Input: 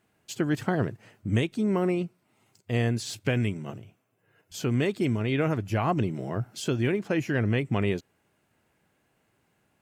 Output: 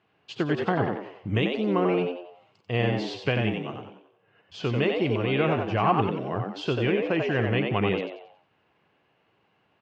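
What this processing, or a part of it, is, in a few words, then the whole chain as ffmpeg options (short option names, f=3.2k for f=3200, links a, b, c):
frequency-shifting delay pedal into a guitar cabinet: -filter_complex "[0:a]asplit=6[a][b][c][d][e][f];[b]adelay=91,afreqshift=88,volume=-5dB[g];[c]adelay=182,afreqshift=176,volume=-13.6dB[h];[d]adelay=273,afreqshift=264,volume=-22.3dB[i];[e]adelay=364,afreqshift=352,volume=-30.9dB[j];[f]adelay=455,afreqshift=440,volume=-39.5dB[k];[a][g][h][i][j][k]amix=inputs=6:normalize=0,highpass=80,equalizer=f=240:t=q:w=4:g=-5,equalizer=f=440:t=q:w=4:g=3,equalizer=f=760:t=q:w=4:g=4,equalizer=f=1.1k:t=q:w=4:g=6,equalizer=f=2.8k:t=q:w=4:g=6,lowpass=f=4.4k:w=0.5412,lowpass=f=4.4k:w=1.3066"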